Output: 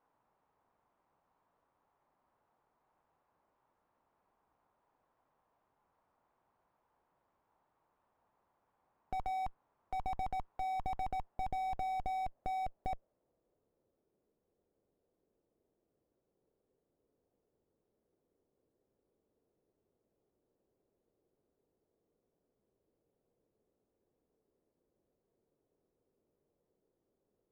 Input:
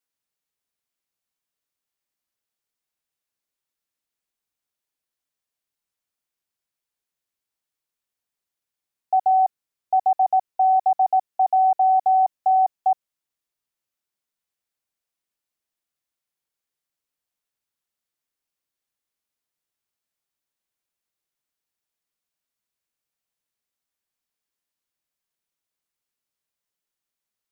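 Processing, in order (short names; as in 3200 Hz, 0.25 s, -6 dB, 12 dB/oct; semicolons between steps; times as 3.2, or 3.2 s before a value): tube stage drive 44 dB, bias 0.55; low-pass sweep 940 Hz -> 440 Hz, 10.74–14.11; slew limiter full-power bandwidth 1.6 Hz; gain +18 dB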